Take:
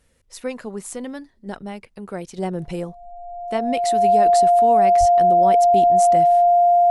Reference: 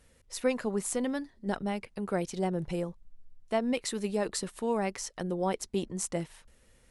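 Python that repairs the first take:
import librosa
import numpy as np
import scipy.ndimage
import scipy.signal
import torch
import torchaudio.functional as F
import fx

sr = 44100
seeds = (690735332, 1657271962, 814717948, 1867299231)

y = fx.notch(x, sr, hz=700.0, q=30.0)
y = fx.highpass(y, sr, hz=140.0, slope=24, at=(4.99, 5.11), fade=0.02)
y = fx.gain(y, sr, db=fx.steps((0.0, 0.0), (2.38, -5.0)))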